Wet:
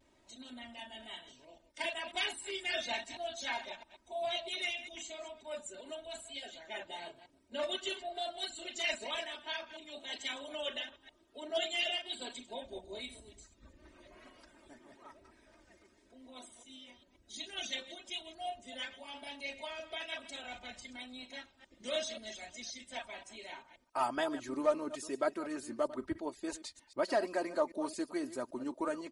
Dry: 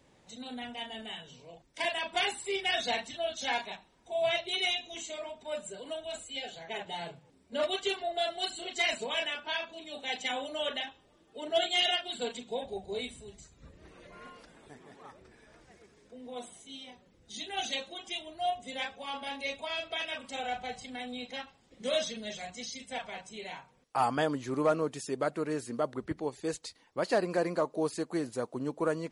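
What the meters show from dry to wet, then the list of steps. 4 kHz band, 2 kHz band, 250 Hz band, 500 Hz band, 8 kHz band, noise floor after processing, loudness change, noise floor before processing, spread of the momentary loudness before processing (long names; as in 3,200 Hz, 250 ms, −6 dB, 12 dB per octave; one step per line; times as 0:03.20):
−5.5 dB, −5.0 dB, −4.5 dB, −5.0 dB, −3.5 dB, −69 dBFS, −5.0 dB, −65 dBFS, 16 LU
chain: delay that plays each chunk backwards 132 ms, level −13 dB
harmonic and percussive parts rebalanced harmonic −7 dB
comb filter 3.2 ms, depth 75%
pitch vibrato 1 Hz 47 cents
level −4 dB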